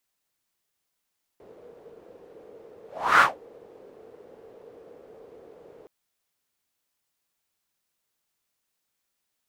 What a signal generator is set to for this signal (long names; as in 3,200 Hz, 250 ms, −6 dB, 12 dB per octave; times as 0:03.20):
pass-by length 4.47 s, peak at 0:01.81, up 0.38 s, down 0.17 s, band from 460 Hz, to 1,400 Hz, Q 5.6, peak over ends 33.5 dB